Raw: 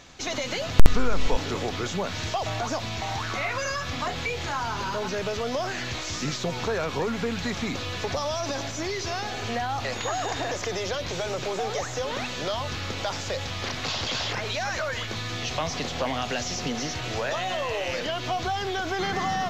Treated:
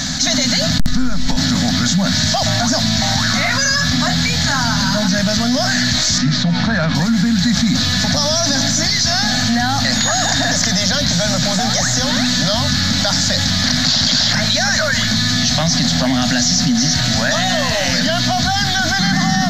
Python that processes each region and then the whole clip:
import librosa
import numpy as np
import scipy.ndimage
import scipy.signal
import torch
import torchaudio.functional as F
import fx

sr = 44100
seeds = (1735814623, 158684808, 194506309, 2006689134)

y = fx.chain(x, sr, fx.lowpass(hz=3200.0, slope=12),
    fx.hum_notches(base_hz=60, count=7), at=(6.18, 6.95))
y = fx.curve_eq(y, sr, hz=(110.0, 170.0, 260.0, 390.0, 620.0, 1100.0, 1700.0, 2600.0, 4200.0, 9100.0), db=(0, 11, 9, -28, -2, -8, 5, -9, 10, 5))
y = fx.env_flatten(y, sr, amount_pct=70)
y = F.gain(torch.from_numpy(y), -5.5).numpy()